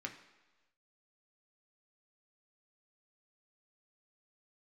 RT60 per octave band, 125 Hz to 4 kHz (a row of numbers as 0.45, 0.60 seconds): 1.0, 1.0, 1.2, 1.2, 1.2, 1.2 seconds